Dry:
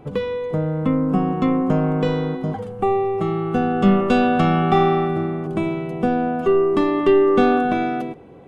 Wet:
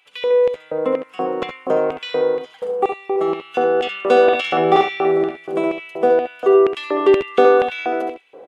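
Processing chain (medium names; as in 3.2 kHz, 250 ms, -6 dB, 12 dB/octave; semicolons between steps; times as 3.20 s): LFO high-pass square 2.1 Hz 490–2700 Hz; 4.23–5.61 s: doubling 49 ms -3 dB; early reflections 67 ms -8.5 dB, 79 ms -15.5 dB; trim +1 dB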